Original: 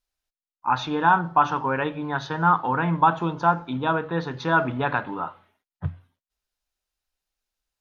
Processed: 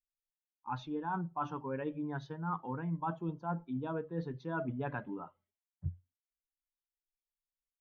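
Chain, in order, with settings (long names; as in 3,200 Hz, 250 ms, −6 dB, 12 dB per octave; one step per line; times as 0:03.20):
spectral dynamics exaggerated over time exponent 1.5
tilt shelving filter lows +8 dB, about 940 Hz
reversed playback
downward compressor, threshold −25 dBFS, peak gain reduction 11.5 dB
reversed playback
level −8.5 dB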